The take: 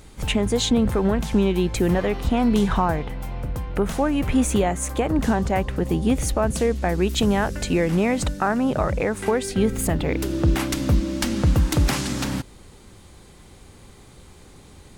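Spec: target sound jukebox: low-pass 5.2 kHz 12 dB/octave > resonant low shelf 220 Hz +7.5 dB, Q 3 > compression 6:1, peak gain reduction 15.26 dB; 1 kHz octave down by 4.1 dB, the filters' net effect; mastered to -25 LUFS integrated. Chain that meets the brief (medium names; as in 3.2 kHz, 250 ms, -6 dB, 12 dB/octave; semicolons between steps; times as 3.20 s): low-pass 5.2 kHz 12 dB/octave; resonant low shelf 220 Hz +7.5 dB, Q 3; peaking EQ 1 kHz -5 dB; compression 6:1, threshold -21 dBFS; trim +0.5 dB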